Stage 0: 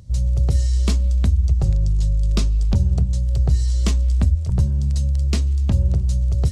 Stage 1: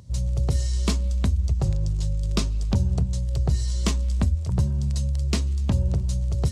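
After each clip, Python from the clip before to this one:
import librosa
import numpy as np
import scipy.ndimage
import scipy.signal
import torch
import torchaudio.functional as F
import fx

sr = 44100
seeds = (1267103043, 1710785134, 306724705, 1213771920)

y = fx.highpass(x, sr, hz=110.0, slope=6)
y = fx.peak_eq(y, sr, hz=1000.0, db=4.0, octaves=0.29)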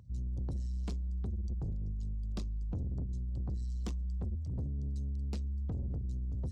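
y = fx.envelope_sharpen(x, sr, power=1.5)
y = 10.0 ** (-24.5 / 20.0) * np.tanh(y / 10.0 ** (-24.5 / 20.0))
y = F.gain(torch.from_numpy(y), -8.0).numpy()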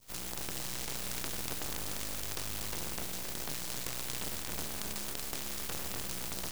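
y = fx.spec_flatten(x, sr, power=0.18)
y = np.maximum(y, 0.0)
y = y + 10.0 ** (-6.5 / 20.0) * np.pad(y, (int(268 * sr / 1000.0), 0))[:len(y)]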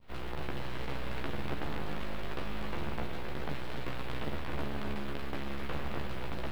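y = fx.air_absorb(x, sr, metres=480.0)
y = fx.doubler(y, sr, ms=14.0, db=-2.5)
y = F.gain(torch.from_numpy(y), 5.0).numpy()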